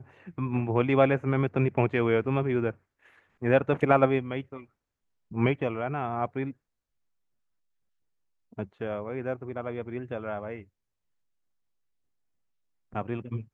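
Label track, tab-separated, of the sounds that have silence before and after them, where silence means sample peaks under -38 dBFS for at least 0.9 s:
8.580000	10.620000	sound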